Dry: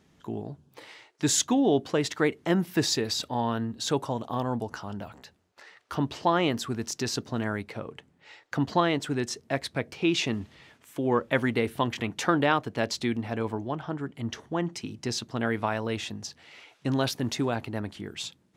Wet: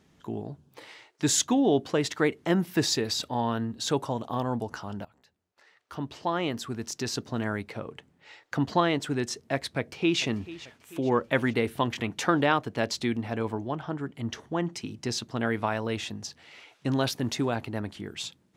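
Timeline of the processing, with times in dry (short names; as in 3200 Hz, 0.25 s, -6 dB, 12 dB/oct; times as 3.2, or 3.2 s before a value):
5.05–7.53 fade in, from -17.5 dB
9.77–10.21 echo throw 0.44 s, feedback 55%, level -17 dB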